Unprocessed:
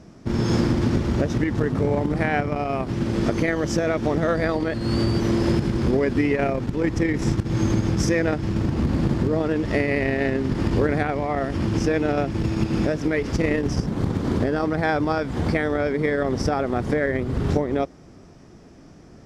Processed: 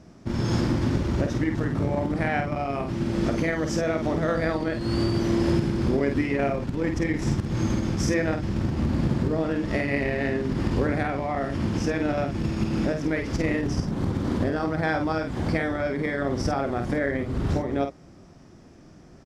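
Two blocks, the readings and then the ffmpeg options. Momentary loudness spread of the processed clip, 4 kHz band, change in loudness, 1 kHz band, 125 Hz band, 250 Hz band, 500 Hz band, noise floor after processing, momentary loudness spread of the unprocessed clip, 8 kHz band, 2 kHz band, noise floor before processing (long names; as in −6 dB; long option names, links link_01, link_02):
3 LU, −2.5 dB, −3.0 dB, −2.5 dB, −3.0 dB, −2.5 dB, −4.0 dB, −49 dBFS, 3 LU, −2.5 dB, −2.5 dB, −47 dBFS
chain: -filter_complex "[0:a]bandreject=frequency=440:width=13,asplit=2[link_01][link_02];[link_02]adelay=50,volume=-6dB[link_03];[link_01][link_03]amix=inputs=2:normalize=0,volume=-3.5dB"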